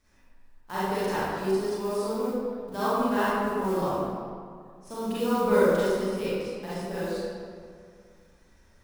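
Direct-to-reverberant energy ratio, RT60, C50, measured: −11.5 dB, 2.2 s, −6.5 dB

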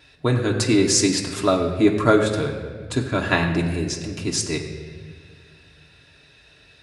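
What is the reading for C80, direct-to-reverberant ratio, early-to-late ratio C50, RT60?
7.5 dB, −1.0 dB, 7.0 dB, 1.7 s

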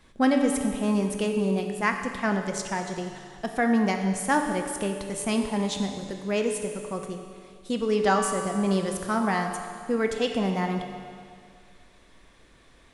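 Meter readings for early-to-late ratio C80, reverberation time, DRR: 6.5 dB, 2.1 s, 4.0 dB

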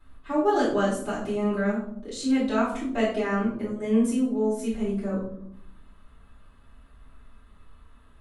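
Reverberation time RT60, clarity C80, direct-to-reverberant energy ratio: 0.70 s, 8.0 dB, −9.0 dB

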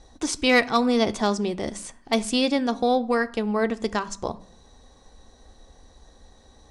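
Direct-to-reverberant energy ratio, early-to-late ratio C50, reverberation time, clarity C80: 10.0 dB, 19.5 dB, 0.60 s, 23.5 dB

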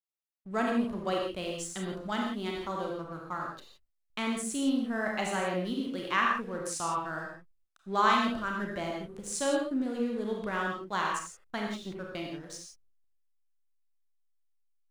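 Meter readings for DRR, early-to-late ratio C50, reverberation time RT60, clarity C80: −1.0 dB, 1.5 dB, non-exponential decay, 4.0 dB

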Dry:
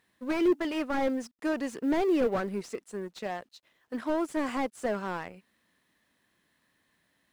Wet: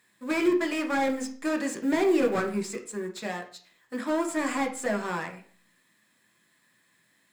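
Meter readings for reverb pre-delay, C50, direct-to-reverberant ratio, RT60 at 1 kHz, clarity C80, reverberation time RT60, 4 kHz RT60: 3 ms, 10.5 dB, 3.0 dB, 0.45 s, 15.0 dB, 0.45 s, 0.45 s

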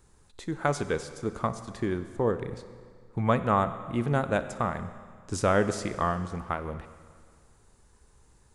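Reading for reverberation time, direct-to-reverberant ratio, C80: 2.0 s, 11.0 dB, 13.0 dB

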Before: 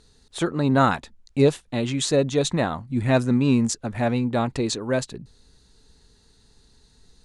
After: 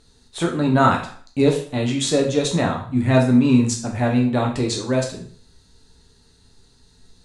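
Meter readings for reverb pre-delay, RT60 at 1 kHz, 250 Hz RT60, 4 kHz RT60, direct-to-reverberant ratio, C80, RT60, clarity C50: 5 ms, 0.50 s, 0.50 s, 0.45 s, 0.5 dB, 12.0 dB, 0.50 s, 7.5 dB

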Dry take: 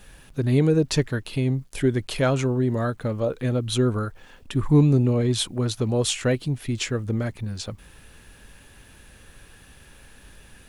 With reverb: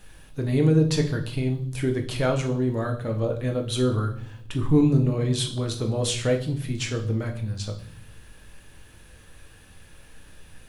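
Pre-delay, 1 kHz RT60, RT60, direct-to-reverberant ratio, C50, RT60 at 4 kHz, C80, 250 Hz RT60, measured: 6 ms, 0.50 s, 0.55 s, 3.5 dB, 11.0 dB, 0.65 s, 15.5 dB, 0.90 s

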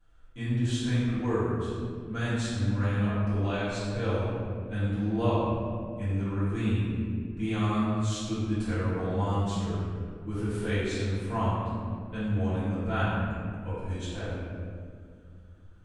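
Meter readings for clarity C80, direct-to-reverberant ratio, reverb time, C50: −1.0 dB, −15.0 dB, 2.2 s, −3.5 dB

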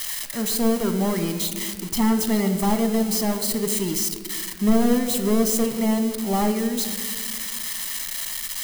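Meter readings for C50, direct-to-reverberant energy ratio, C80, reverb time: 9.5 dB, 7.5 dB, 10.5 dB, 1.9 s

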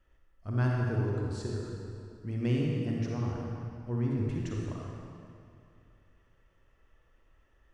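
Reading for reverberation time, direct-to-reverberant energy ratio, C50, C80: 2.6 s, −2.5 dB, −1.5 dB, 0.0 dB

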